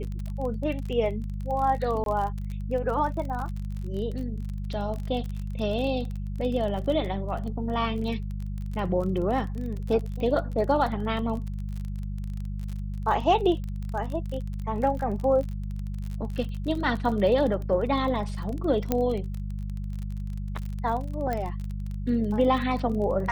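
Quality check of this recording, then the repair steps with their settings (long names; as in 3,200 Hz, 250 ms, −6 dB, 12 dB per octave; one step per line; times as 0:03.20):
surface crackle 33 per second −32 dBFS
mains hum 50 Hz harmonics 4 −32 dBFS
0:02.04–0:02.06: drop-out 22 ms
0:18.92: click −10 dBFS
0:21.33: click −17 dBFS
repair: click removal
hum removal 50 Hz, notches 4
repair the gap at 0:02.04, 22 ms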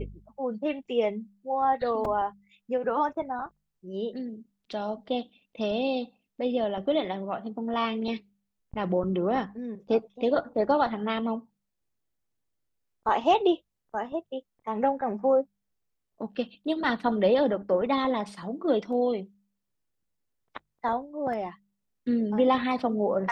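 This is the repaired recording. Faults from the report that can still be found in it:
0:18.92: click
0:21.33: click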